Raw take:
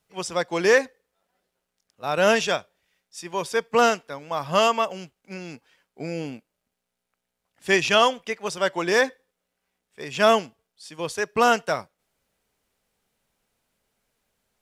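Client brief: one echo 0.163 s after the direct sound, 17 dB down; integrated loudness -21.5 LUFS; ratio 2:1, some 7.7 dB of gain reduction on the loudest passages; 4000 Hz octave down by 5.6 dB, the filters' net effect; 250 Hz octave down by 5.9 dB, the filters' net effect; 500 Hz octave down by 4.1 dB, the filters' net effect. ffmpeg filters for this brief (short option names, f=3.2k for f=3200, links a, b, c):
-af "equalizer=f=250:t=o:g=-7,equalizer=f=500:t=o:g=-3.5,equalizer=f=4k:t=o:g=-8,acompressor=threshold=-30dB:ratio=2,aecho=1:1:163:0.141,volume=10.5dB"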